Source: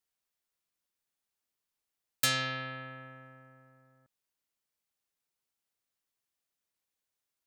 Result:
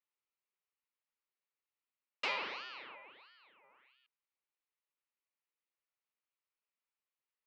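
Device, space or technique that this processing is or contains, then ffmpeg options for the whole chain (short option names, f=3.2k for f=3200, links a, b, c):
voice changer toy: -filter_complex "[0:a]asettb=1/sr,asplit=3[a][b][c];[a]atrim=end=2.954[d];[b]atrim=start=2.95:end=3.64,asetpts=PTS-STARTPTS,afade=t=in:d=0.004:c=qsin,afade=t=out:st=0.686:d=0.004:c=qsin,equalizer=f=250:t=o:w=1:g=-11,equalizer=f=500:t=o:w=1:g=-12,equalizer=f=1k:t=o:w=1:g=4,equalizer=f=4k:t=o:w=1:g=-6[e];[c]atrim=start=3.636[f];[d][e]acrossfade=d=0.004:c1=hsin:c2=qsin[g];[g][f]acrossfade=d=0.004:c1=qsin:c2=hsin,aeval=exprs='val(0)*sin(2*PI*1900*n/s+1900*0.65/1.5*sin(2*PI*1.5*n/s))':c=same,highpass=480,equalizer=f=700:t=q:w=4:g=-9,equalizer=f=1.6k:t=q:w=4:g=-6,equalizer=f=3.4k:t=q:w=4:g=-7,lowpass=f=3.5k:w=0.5412,lowpass=f=3.5k:w=1.3066,volume=1dB"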